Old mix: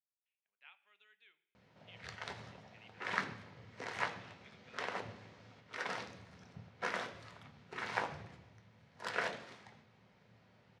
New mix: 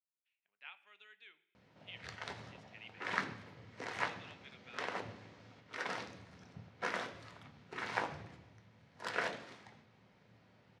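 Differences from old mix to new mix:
speech +7.5 dB; master: add peaking EQ 300 Hz +5.5 dB 0.3 oct

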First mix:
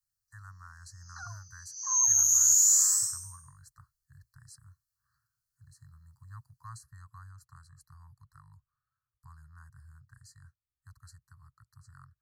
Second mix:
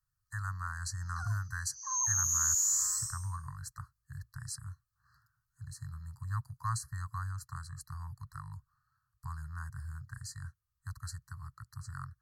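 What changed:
speech +11.5 dB; second sound: add tilt shelf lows +8 dB, about 1.2 kHz

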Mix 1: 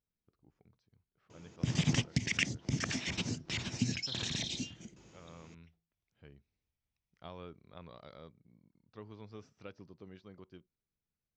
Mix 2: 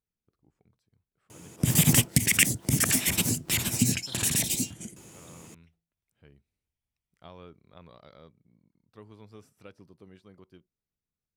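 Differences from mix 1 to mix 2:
first sound +8.0 dB; master: remove steep low-pass 6.3 kHz 48 dB/octave

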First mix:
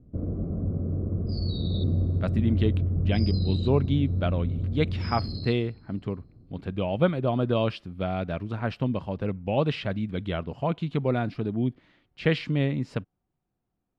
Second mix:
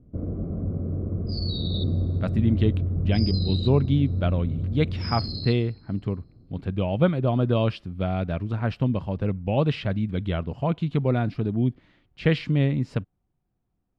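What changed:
speech: add bass shelf 150 Hz +8.5 dB; first sound: remove distance through air 350 m; second sound +6.5 dB

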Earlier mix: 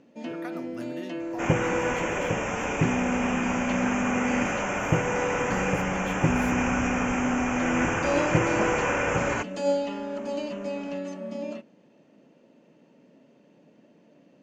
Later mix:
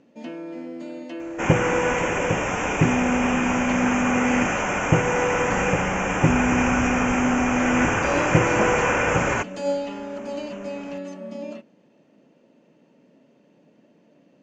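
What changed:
speech: muted; second sound +5.0 dB

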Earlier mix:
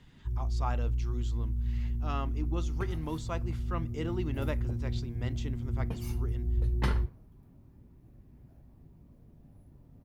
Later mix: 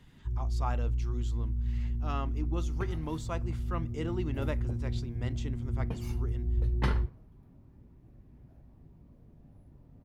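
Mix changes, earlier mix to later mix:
speech: remove low-pass 5.8 kHz 12 dB/octave; second sound: send +11.0 dB; master: add treble shelf 7.1 kHz -9.5 dB

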